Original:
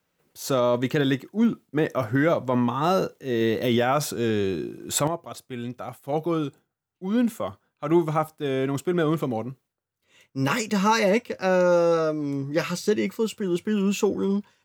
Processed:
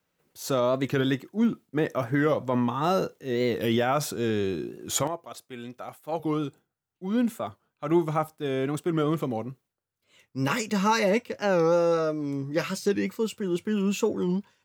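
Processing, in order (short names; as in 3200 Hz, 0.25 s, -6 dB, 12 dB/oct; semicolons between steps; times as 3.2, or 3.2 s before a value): 5.03–6.21 low shelf 190 Hz -11.5 dB; record warp 45 rpm, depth 160 cents; gain -2.5 dB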